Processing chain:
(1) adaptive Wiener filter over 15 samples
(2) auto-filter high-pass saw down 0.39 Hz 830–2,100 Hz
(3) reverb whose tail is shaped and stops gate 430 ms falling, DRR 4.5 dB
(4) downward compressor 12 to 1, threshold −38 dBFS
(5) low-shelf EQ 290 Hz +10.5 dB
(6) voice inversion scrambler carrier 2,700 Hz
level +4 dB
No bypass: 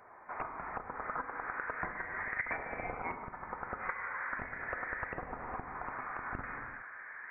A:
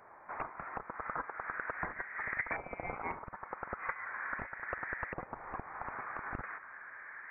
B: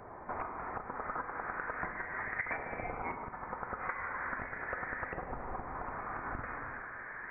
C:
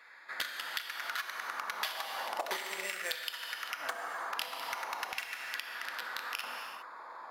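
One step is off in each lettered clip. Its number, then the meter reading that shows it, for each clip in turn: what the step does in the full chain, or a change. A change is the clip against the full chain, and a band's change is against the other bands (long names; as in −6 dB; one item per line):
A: 3, change in integrated loudness −1.0 LU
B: 1, 2 kHz band −2.5 dB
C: 6, 250 Hz band −9.0 dB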